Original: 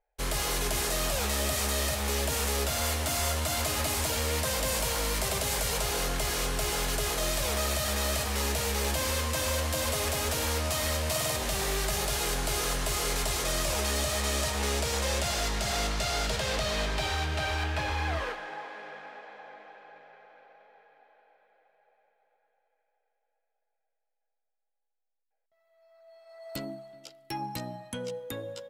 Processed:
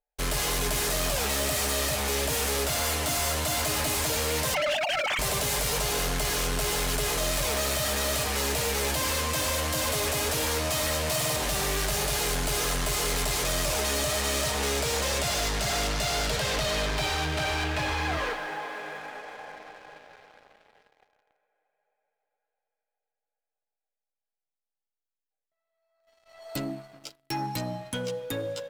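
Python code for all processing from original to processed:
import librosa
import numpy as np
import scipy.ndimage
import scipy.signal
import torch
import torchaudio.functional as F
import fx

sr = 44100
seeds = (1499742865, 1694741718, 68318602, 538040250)

y = fx.chain(x, sr, fx.sine_speech(),
    fx.tilt_eq(slope=3.5), at=(4.54, 5.19))
y = y + 0.42 * np.pad(y, (int(6.8 * sr / 1000.0), 0))[:len(y)]
y = fx.leveller(y, sr, passes=3)
y = y * librosa.db_to_amplitude(-5.5)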